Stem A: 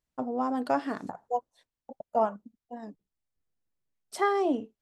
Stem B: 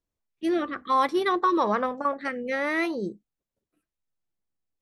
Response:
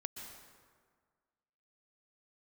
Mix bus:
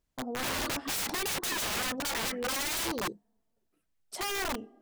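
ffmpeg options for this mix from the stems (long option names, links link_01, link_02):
-filter_complex "[0:a]acompressor=threshold=-44dB:ratio=1.5,volume=1.5dB,asplit=2[link_01][link_02];[link_02]volume=-20.5dB[link_03];[1:a]aphaser=in_gain=1:out_gain=1:delay=3.1:decay=0.52:speed=1.5:type=triangular,volume=-1.5dB[link_04];[2:a]atrim=start_sample=2205[link_05];[link_03][link_05]afir=irnorm=-1:irlink=0[link_06];[link_01][link_04][link_06]amix=inputs=3:normalize=0,aeval=exprs='(mod(23.7*val(0)+1,2)-1)/23.7':channel_layout=same"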